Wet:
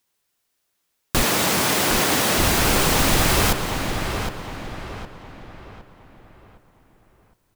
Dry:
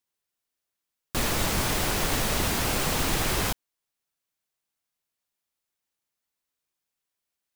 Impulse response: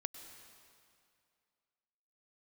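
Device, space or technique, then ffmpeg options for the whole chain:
compressed reverb return: -filter_complex "[0:a]asplit=2[a][b];[1:a]atrim=start_sample=2205[c];[b][c]afir=irnorm=-1:irlink=0,acompressor=threshold=-34dB:ratio=6,volume=5dB[d];[a][d]amix=inputs=2:normalize=0,asettb=1/sr,asplit=3[e][f][g];[e]atrim=end=1.234[h];[f]atrim=start=1.23:end=2.38,asetpts=PTS-STARTPTS,afade=t=in:d=0.004:c=qsin,afade=t=out:st=1.146:d=0.004:c=qsin,highpass=170[i];[g]atrim=start=2.376[j];[h][i]acrossfade=d=0.004:c1=hsin:c2=qsin[k];[k][j]acrossfade=d=0.004:c1=qsin:c2=hsin,asplit=2[l][m];[m]adelay=762,lowpass=f=3.2k:p=1,volume=-6dB,asplit=2[n][o];[o]adelay=762,lowpass=f=3.2k:p=1,volume=0.42,asplit=2[p][q];[q]adelay=762,lowpass=f=3.2k:p=1,volume=0.42,asplit=2[r][s];[s]adelay=762,lowpass=f=3.2k:p=1,volume=0.42,asplit=2[t][u];[u]adelay=762,lowpass=f=3.2k:p=1,volume=0.42[v];[l][n][p][r][t][v]amix=inputs=6:normalize=0,volume=4dB"

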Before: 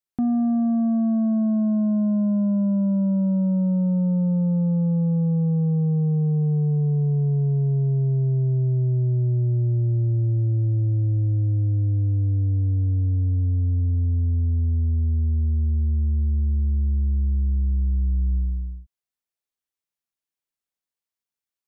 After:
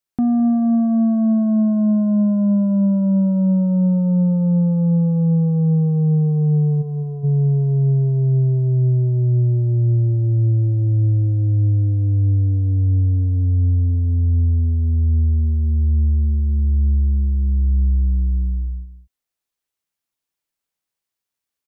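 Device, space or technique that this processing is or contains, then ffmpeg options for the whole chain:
ducked delay: -filter_complex "[0:a]asplit=3[a][b][c];[a]afade=t=out:st=6.81:d=0.02[d];[b]lowshelf=f=430:g=-11,afade=t=in:st=6.81:d=0.02,afade=t=out:st=7.23:d=0.02[e];[c]afade=t=in:st=7.23:d=0.02[f];[d][e][f]amix=inputs=3:normalize=0,asplit=3[g][h][i];[h]adelay=211,volume=-4.5dB[j];[i]apad=whole_len=965260[k];[j][k]sidechaincompress=threshold=-33dB:ratio=8:attack=16:release=1120[l];[g][l]amix=inputs=2:normalize=0,volume=4.5dB"

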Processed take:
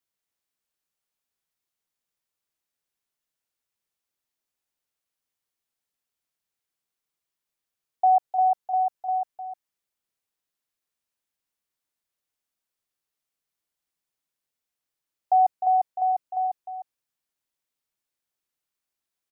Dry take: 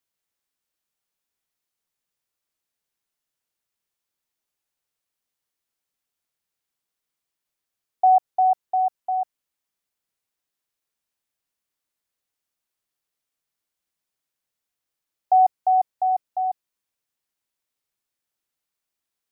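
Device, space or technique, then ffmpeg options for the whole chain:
ducked delay: -filter_complex "[0:a]asplit=3[a][b][c];[b]adelay=305,volume=-8.5dB[d];[c]apad=whole_len=865293[e];[d][e]sidechaincompress=threshold=-24dB:ratio=8:attack=16:release=152[f];[a][f]amix=inputs=2:normalize=0,volume=-3dB"

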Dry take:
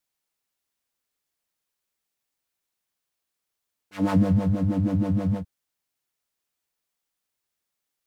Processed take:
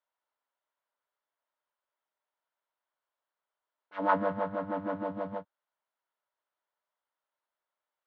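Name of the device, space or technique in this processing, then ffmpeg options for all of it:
phone earpiece: -filter_complex "[0:a]highpass=420,equalizer=f=600:t=q:w=4:g=9,equalizer=f=960:t=q:w=4:g=10,equalizer=f=1.4k:t=q:w=4:g=6,equalizer=f=2.5k:t=q:w=4:g=-7,lowpass=f=3.2k:w=0.5412,lowpass=f=3.2k:w=1.3066,asettb=1/sr,asplit=3[a][b][c];[a]atrim=end=4.094[d];[b]atrim=start=4.09:end=5.04,asetpts=PTS-STARTPTS,afade=t=in:d=0.004:c=qsin,afade=t=out:st=0.946:d=0.004:c=qsin,equalizer=f=1.5k:t=o:w=1.4:g=5.5[e];[c]atrim=start=5.036[f];[d][e]acrossfade=d=0.004:c1=hsin:c2=qsin[g];[g][f]acrossfade=d=0.004:c1=qsin:c2=hsin,volume=-4dB"

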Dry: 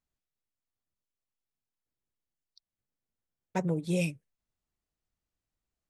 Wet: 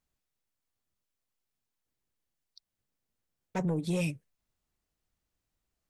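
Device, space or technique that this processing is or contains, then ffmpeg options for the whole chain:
soft clipper into limiter: -af "asoftclip=type=tanh:threshold=-23dB,alimiter=level_in=4.5dB:limit=-24dB:level=0:latency=1:release=19,volume=-4.5dB,volume=4.5dB"

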